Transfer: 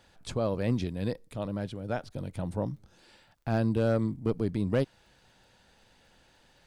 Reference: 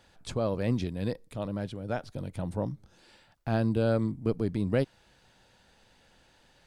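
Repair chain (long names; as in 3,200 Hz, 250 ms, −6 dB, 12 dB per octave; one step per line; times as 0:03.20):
clipped peaks rebuilt −17.5 dBFS
click removal
repair the gap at 0:02.09, 12 ms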